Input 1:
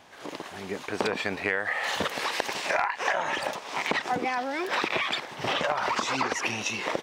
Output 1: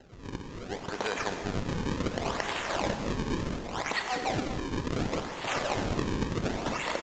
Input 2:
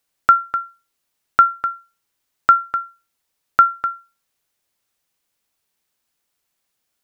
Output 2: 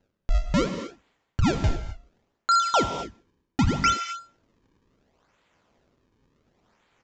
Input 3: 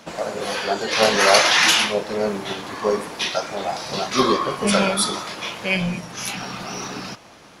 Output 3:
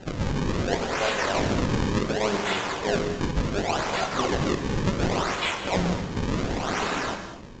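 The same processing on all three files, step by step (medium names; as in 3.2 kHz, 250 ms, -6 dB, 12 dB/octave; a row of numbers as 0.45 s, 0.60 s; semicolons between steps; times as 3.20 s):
bass shelf 430 Hz -9 dB; reverse; compression 16:1, threshold -27 dBFS; reverse; decimation with a swept rate 37×, swing 160% 0.69 Hz; gated-style reverb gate 280 ms flat, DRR 6.5 dB; resampled via 16 kHz; peak normalisation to -12 dBFS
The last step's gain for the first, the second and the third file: +0.5 dB, +7.5 dB, +5.5 dB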